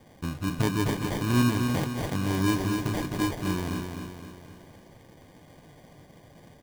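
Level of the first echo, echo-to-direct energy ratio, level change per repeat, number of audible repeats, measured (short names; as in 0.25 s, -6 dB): -5.5 dB, -4.5 dB, -6.0 dB, 5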